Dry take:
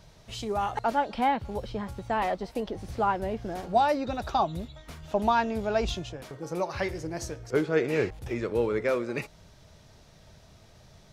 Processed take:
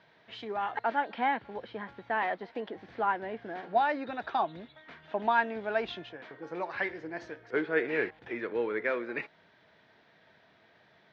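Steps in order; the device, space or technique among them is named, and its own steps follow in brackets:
phone earpiece (loudspeaker in its box 380–3,100 Hz, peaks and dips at 400 Hz −4 dB, 570 Hz −8 dB, 820 Hz −4 dB, 1,200 Hz −6 dB, 1,700 Hz +5 dB, 2,700 Hz −5 dB)
level +1.5 dB

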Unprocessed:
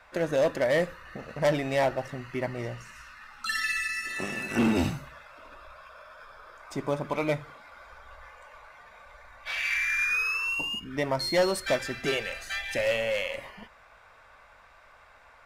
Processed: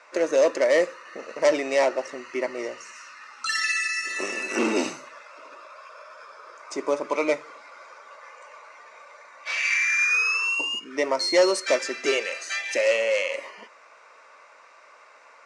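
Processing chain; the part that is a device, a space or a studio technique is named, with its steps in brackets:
phone speaker on a table (loudspeaker in its box 330–8,400 Hz, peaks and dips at 760 Hz −9 dB, 1,600 Hz −7 dB, 3,400 Hz −9 dB, 6,100 Hz +5 dB)
level +7 dB

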